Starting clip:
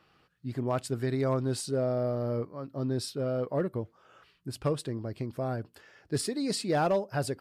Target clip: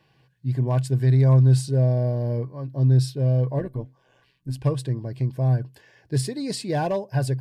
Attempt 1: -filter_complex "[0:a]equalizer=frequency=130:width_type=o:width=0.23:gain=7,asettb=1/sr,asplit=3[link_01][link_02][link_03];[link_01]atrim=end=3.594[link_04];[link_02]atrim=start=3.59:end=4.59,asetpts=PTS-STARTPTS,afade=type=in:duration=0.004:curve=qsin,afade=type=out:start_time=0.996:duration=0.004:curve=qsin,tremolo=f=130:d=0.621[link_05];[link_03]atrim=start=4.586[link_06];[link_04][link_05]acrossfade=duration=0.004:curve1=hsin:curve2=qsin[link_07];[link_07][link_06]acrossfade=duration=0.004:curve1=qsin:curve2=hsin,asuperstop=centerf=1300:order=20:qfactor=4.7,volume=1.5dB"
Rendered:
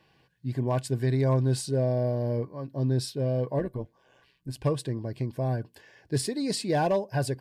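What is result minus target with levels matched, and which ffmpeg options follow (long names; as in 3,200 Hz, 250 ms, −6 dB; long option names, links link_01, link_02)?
125 Hz band −3.0 dB
-filter_complex "[0:a]equalizer=frequency=130:width_type=o:width=0.23:gain=17.5,asettb=1/sr,asplit=3[link_01][link_02][link_03];[link_01]atrim=end=3.594[link_04];[link_02]atrim=start=3.59:end=4.59,asetpts=PTS-STARTPTS,afade=type=in:duration=0.004:curve=qsin,afade=type=out:start_time=0.996:duration=0.004:curve=qsin,tremolo=f=130:d=0.621[link_05];[link_03]atrim=start=4.586[link_06];[link_04][link_05]acrossfade=duration=0.004:curve1=hsin:curve2=qsin[link_07];[link_07][link_06]acrossfade=duration=0.004:curve1=qsin:curve2=hsin,asuperstop=centerf=1300:order=20:qfactor=4.7,volume=1.5dB"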